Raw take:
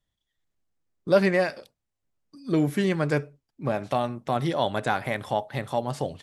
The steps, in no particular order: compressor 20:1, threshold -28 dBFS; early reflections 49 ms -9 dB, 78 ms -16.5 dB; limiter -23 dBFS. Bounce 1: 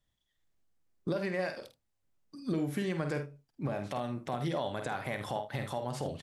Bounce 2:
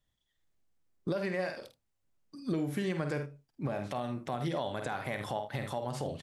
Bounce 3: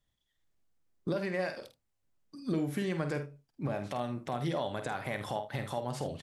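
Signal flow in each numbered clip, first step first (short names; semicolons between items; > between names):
compressor > early reflections > limiter; early reflections > compressor > limiter; compressor > limiter > early reflections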